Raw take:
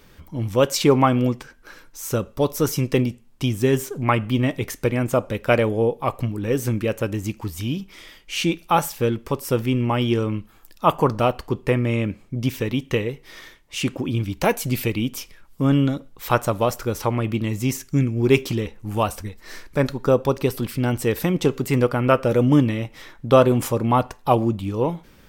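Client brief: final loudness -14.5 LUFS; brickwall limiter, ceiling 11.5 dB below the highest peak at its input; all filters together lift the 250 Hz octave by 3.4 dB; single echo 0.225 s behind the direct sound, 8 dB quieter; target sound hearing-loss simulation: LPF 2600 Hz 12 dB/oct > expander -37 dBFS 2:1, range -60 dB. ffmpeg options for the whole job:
-af "equalizer=f=250:t=o:g=4,alimiter=limit=-13dB:level=0:latency=1,lowpass=2.6k,aecho=1:1:225:0.398,agate=range=-60dB:threshold=-37dB:ratio=2,volume=9.5dB"

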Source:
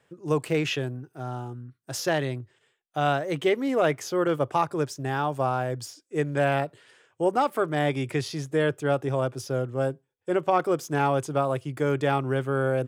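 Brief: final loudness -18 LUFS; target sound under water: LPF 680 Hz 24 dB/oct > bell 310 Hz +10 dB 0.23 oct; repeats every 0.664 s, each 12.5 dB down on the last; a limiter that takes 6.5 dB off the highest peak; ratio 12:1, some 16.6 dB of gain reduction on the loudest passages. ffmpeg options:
-af "acompressor=threshold=-35dB:ratio=12,alimiter=level_in=6dB:limit=-24dB:level=0:latency=1,volume=-6dB,lowpass=f=680:w=0.5412,lowpass=f=680:w=1.3066,equalizer=f=310:t=o:w=0.23:g=10,aecho=1:1:664|1328|1992:0.237|0.0569|0.0137,volume=22.5dB"

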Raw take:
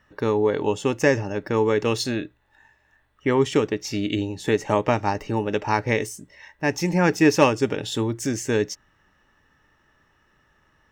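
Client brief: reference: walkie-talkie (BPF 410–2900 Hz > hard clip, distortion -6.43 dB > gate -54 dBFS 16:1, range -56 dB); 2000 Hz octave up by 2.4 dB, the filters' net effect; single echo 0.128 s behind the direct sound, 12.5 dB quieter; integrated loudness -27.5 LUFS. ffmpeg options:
-af "highpass=410,lowpass=2.9k,equalizer=f=2k:t=o:g=4,aecho=1:1:128:0.237,asoftclip=type=hard:threshold=-21.5dB,agate=range=-56dB:threshold=-54dB:ratio=16,volume=1dB"

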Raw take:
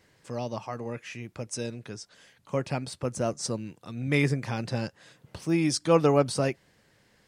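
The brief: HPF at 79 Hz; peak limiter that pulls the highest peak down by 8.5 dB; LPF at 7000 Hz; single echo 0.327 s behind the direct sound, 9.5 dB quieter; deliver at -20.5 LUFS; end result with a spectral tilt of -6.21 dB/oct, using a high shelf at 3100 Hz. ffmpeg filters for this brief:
-af "highpass=79,lowpass=7k,highshelf=f=3.1k:g=-5.5,alimiter=limit=-17.5dB:level=0:latency=1,aecho=1:1:327:0.335,volume=12dB"

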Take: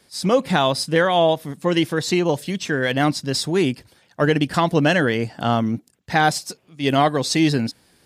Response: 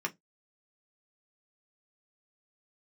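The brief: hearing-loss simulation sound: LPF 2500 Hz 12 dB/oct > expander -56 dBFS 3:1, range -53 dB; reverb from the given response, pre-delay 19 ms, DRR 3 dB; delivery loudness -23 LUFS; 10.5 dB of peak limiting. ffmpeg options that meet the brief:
-filter_complex "[0:a]alimiter=limit=-16dB:level=0:latency=1,asplit=2[a][b];[1:a]atrim=start_sample=2205,adelay=19[c];[b][c]afir=irnorm=-1:irlink=0,volume=-7.5dB[d];[a][d]amix=inputs=2:normalize=0,lowpass=2.5k,agate=range=-53dB:threshold=-56dB:ratio=3,volume=2dB"

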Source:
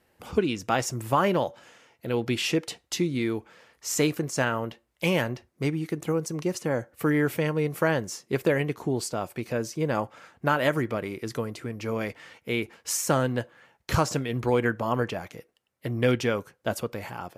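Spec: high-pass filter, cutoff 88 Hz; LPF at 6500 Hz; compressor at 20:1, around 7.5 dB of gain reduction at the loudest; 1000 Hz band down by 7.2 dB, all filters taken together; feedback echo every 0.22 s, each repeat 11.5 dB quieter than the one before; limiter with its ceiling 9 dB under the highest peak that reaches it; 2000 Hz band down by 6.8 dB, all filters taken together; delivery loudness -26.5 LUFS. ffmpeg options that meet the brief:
-af "highpass=88,lowpass=6.5k,equalizer=f=1k:t=o:g=-8,equalizer=f=2k:t=o:g=-6,acompressor=threshold=-26dB:ratio=20,alimiter=limit=-24dB:level=0:latency=1,aecho=1:1:220|440|660:0.266|0.0718|0.0194,volume=9dB"

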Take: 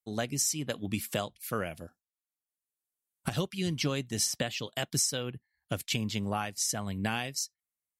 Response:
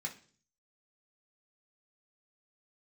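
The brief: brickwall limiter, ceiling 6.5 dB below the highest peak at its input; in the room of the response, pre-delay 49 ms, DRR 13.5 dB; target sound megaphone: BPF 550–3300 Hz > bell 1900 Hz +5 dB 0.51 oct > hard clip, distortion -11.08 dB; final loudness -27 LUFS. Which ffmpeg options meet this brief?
-filter_complex "[0:a]alimiter=limit=-22.5dB:level=0:latency=1,asplit=2[a][b];[1:a]atrim=start_sample=2205,adelay=49[c];[b][c]afir=irnorm=-1:irlink=0,volume=-13.5dB[d];[a][d]amix=inputs=2:normalize=0,highpass=550,lowpass=3.3k,equalizer=f=1.9k:t=o:w=0.51:g=5,asoftclip=type=hard:threshold=-32.5dB,volume=14.5dB"

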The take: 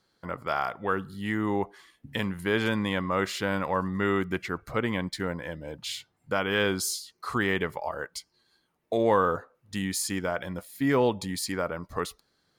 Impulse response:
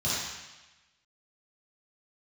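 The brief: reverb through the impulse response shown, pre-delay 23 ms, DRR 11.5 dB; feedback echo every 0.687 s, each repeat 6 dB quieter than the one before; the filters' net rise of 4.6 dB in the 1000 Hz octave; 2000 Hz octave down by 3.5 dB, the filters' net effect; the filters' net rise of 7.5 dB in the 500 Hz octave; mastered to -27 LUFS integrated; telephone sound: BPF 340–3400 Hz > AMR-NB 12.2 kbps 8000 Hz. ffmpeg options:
-filter_complex "[0:a]equalizer=f=500:t=o:g=9,equalizer=f=1k:t=o:g=5.5,equalizer=f=2k:t=o:g=-7.5,aecho=1:1:687|1374|2061|2748|3435|4122:0.501|0.251|0.125|0.0626|0.0313|0.0157,asplit=2[a][b];[1:a]atrim=start_sample=2205,adelay=23[c];[b][c]afir=irnorm=-1:irlink=0,volume=-21.5dB[d];[a][d]amix=inputs=2:normalize=0,highpass=340,lowpass=3.4k,volume=-2.5dB" -ar 8000 -c:a libopencore_amrnb -b:a 12200

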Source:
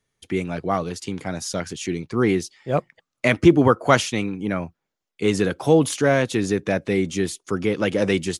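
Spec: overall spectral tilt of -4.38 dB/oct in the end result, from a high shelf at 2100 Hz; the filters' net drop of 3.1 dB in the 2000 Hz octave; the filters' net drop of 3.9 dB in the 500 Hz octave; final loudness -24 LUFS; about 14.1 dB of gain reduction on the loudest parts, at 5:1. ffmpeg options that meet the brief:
-af "equalizer=f=500:t=o:g=-5,equalizer=f=2k:t=o:g=-6,highshelf=f=2.1k:g=4,acompressor=threshold=-26dB:ratio=5,volume=7dB"

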